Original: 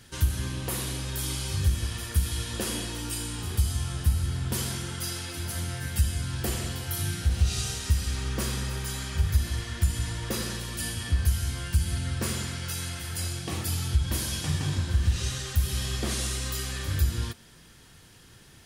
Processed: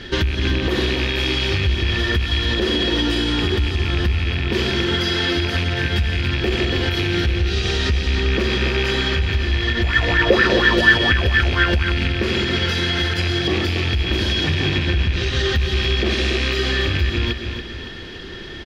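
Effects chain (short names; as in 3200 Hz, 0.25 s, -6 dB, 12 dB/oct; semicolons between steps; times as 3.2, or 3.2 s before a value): rattling part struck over -29 dBFS, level -24 dBFS; graphic EQ 125/1000/4000/8000 Hz -11/-6/+3/-6 dB; compressor 6:1, threshold -35 dBFS, peak gain reduction 14.5 dB; small resonant body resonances 370/1800/3300 Hz, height 9 dB; short-mantissa float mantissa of 6-bit; air absorption 210 m; feedback echo 0.282 s, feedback 43%, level -9 dB; maximiser +30.5 dB; 9.83–11.92 LFO bell 4.2 Hz 510–1700 Hz +17 dB; gain -9 dB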